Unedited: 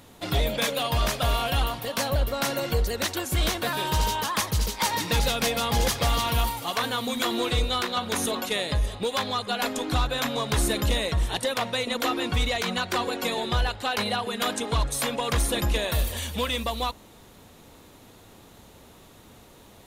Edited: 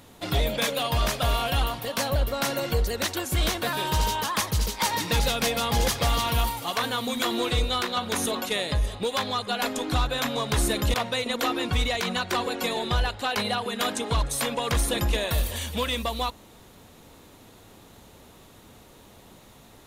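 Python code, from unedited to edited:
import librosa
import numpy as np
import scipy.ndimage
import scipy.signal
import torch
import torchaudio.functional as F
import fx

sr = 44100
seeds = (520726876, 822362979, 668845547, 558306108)

y = fx.edit(x, sr, fx.cut(start_s=10.94, length_s=0.61), tone=tone)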